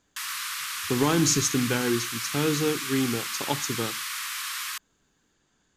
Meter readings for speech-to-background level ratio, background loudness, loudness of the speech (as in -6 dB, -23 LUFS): 4.0 dB, -30.5 LUFS, -26.5 LUFS